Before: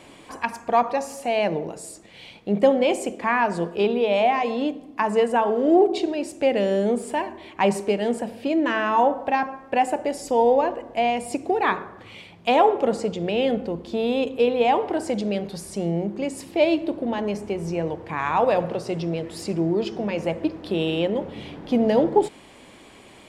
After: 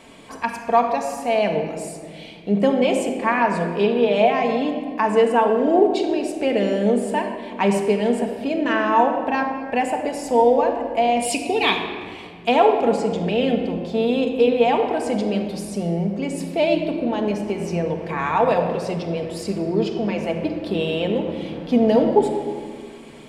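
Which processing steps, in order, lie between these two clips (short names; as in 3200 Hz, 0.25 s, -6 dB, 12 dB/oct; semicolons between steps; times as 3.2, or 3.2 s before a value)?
11.22–11.84 resonant high shelf 2100 Hz +10 dB, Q 3; shoebox room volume 3400 m³, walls mixed, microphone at 1.6 m; 17.49–18.94 mismatched tape noise reduction encoder only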